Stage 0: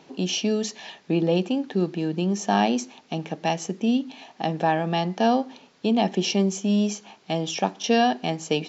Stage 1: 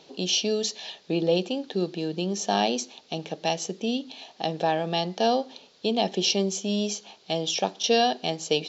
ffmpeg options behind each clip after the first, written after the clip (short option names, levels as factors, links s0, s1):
-af "equalizer=f=125:t=o:w=1:g=-4,equalizer=f=250:t=o:w=1:g=-6,equalizer=f=500:t=o:w=1:g=4,equalizer=f=1000:t=o:w=1:g=-4,equalizer=f=2000:t=o:w=1:g=-5,equalizer=f=4000:t=o:w=1:g=9,volume=0.891"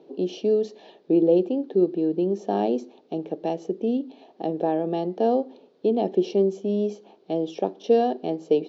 -af "bandpass=f=350:t=q:w=2:csg=0,volume=2.66"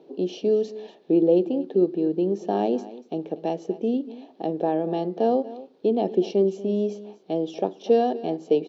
-af "aecho=1:1:239:0.141"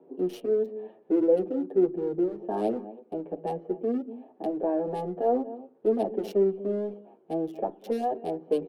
-filter_complex "[0:a]acrossover=split=250|520|1900[s0][s1][s2][s3];[s0]asoftclip=type=hard:threshold=0.0126[s4];[s3]acrusher=bits=5:mix=0:aa=0.5[s5];[s4][s1][s2][s5]amix=inputs=4:normalize=0,asplit=2[s6][s7];[s7]adelay=7.9,afreqshift=-0.59[s8];[s6][s8]amix=inputs=2:normalize=1"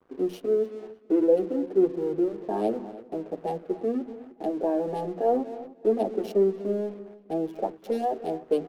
-filter_complex "[0:a]bandreject=f=60:t=h:w=6,bandreject=f=120:t=h:w=6,bandreject=f=180:t=h:w=6,bandreject=f=240:t=h:w=6,aeval=exprs='sgn(val(0))*max(abs(val(0))-0.002,0)':c=same,asplit=2[s0][s1];[s1]adelay=303,lowpass=f=4100:p=1,volume=0.126,asplit=2[s2][s3];[s3]adelay=303,lowpass=f=4100:p=1,volume=0.4,asplit=2[s4][s5];[s5]adelay=303,lowpass=f=4100:p=1,volume=0.4[s6];[s0][s2][s4][s6]amix=inputs=4:normalize=0,volume=1.19"